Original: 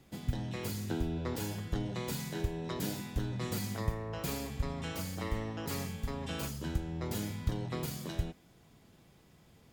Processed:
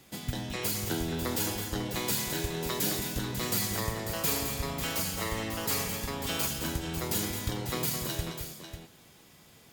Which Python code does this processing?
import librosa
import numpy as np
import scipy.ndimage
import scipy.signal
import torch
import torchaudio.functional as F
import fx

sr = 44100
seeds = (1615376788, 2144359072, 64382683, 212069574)

y = fx.tilt_eq(x, sr, slope=2.0)
y = fx.echo_multitap(y, sr, ms=(215, 545), db=(-8.0, -9.5))
y = y * 10.0 ** (5.5 / 20.0)